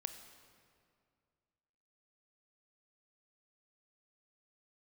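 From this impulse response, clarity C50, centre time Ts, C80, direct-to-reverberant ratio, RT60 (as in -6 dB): 9.0 dB, 23 ms, 10.0 dB, 8.0 dB, 2.2 s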